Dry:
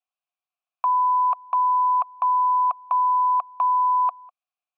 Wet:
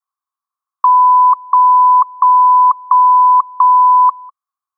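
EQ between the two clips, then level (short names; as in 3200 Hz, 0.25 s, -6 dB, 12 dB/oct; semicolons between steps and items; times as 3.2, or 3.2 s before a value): steep high-pass 840 Hz 48 dB/oct; bell 1100 Hz +13.5 dB 0.51 oct; fixed phaser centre 1100 Hz, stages 4; +2.0 dB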